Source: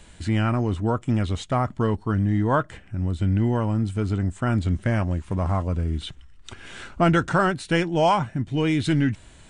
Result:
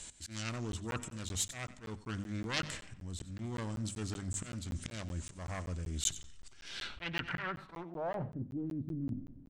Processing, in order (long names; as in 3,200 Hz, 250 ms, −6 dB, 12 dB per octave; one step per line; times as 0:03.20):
phase distortion by the signal itself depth 0.39 ms
volume swells 407 ms
mains-hum notches 50/100/150/200/250 Hz
on a send at −23.5 dB: convolution reverb RT60 0.75 s, pre-delay 100 ms
on the sum: low-pass filter sweep 7,200 Hz → 250 Hz, 0:06.45–0:08.72
reversed playback
downward compressor 8 to 1, threshold −28 dBFS, peak gain reduction 14.5 dB
reversed playback
first-order pre-emphasis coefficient 0.8
notch filter 6,900 Hz, Q 27
single-tap delay 91 ms −16.5 dB
regular buffer underruns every 0.19 s, samples 512, zero, from 0:00.72
level +6.5 dB